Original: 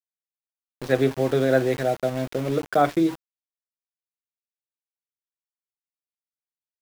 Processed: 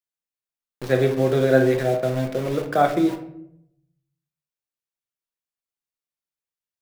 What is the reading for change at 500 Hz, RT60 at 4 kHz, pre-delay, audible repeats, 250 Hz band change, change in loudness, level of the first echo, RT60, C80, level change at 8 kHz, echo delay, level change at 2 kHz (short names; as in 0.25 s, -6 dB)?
+2.5 dB, 0.40 s, 6 ms, none, +1.5 dB, +2.0 dB, none, 0.75 s, 13.0 dB, +0.5 dB, none, +2.0 dB